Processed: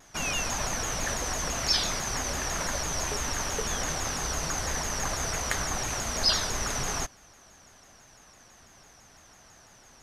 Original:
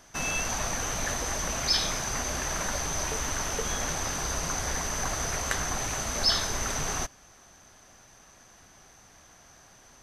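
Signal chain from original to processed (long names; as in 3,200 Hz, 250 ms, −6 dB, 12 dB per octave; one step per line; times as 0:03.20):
pitch modulation by a square or saw wave saw down 6 Hz, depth 160 cents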